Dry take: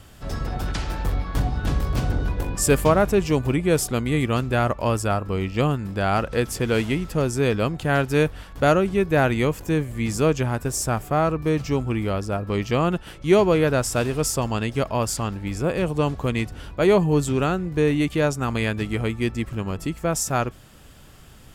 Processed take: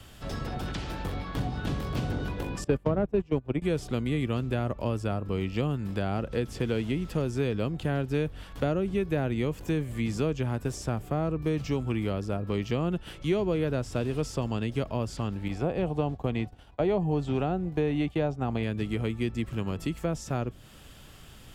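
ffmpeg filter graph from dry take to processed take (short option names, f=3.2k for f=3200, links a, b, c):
-filter_complex "[0:a]asettb=1/sr,asplit=3[a][b][c];[a]atrim=end=2.644[d];[b]atrim=start=2.64:end=3.62,asetpts=PTS-STARTPTS,afade=t=in:d=0.004:c=qsin,afade=t=out:st=0.976:d=0.004:c=qsin,lowpass=f=1.3k:p=1,agate=range=-23dB:threshold=-20dB:ratio=16:release=100:detection=peak,acontrast=79[e];[c]atrim=start=3.616[f];[d][e]acrossfade=d=0.004:c1=hsin:c2=qsin[g];[g][f]acrossfade=d=0.004:c1=qsin:c2=hsin,asettb=1/sr,asplit=3[h][i][j];[h]atrim=end=15.484[k];[i]atrim=start=15.48:end=18.63,asetpts=PTS-STARTPTS,afade=t=in:d=0.004:c=qsin,afade=t=out:st=3.146:d=0.004:c=qsin,agate=range=-33dB:threshold=-27dB:ratio=3:release=100:detection=peak,acrossover=split=4800[l][m];[m]acompressor=threshold=-55dB:ratio=4:attack=1:release=60[n];[l][n]amix=inputs=2:normalize=0,equalizer=f=750:w=2.9:g=11.5[o];[j]atrim=start=18.626[p];[k][o]acrossfade=d=0.004:c1=hsin:c2=qsin[q];[q][p]acrossfade=d=0.004:c1=qsin:c2=hsin,acrossover=split=5400[r][s];[s]acompressor=threshold=-42dB:ratio=4:attack=1:release=60[t];[r][t]amix=inputs=2:normalize=0,equalizer=f=3.2k:w=1.6:g=4.5,acrossover=split=100|530[u][v][w];[u]acompressor=threshold=-37dB:ratio=4[x];[v]acompressor=threshold=-23dB:ratio=4[y];[w]acompressor=threshold=-36dB:ratio=4[z];[x][y][z]amix=inputs=3:normalize=0,volume=-2.5dB"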